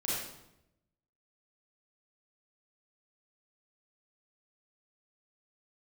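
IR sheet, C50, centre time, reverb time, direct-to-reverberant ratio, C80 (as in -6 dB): -2.5 dB, 79 ms, 0.85 s, -8.0 dB, 2.0 dB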